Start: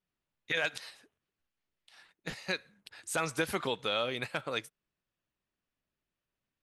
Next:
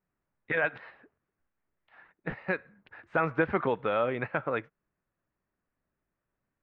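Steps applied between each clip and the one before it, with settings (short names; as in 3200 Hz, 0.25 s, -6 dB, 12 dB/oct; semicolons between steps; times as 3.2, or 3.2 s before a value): LPF 1900 Hz 24 dB/oct; gain +6 dB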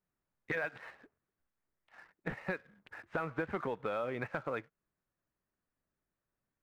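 compressor 4:1, threshold -34 dBFS, peak gain reduction 11.5 dB; sample leveller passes 1; gain -3 dB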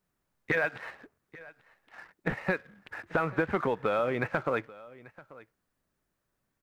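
echo 0.837 s -20.5 dB; gain +8 dB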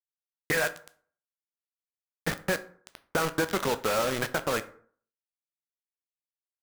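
bit-crush 5-bit; on a send at -10.5 dB: reverb RT60 0.50 s, pre-delay 7 ms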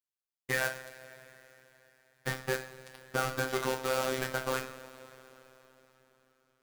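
two-slope reverb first 0.39 s, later 4.1 s, from -18 dB, DRR 3 dB; robotiser 130 Hz; gain -3.5 dB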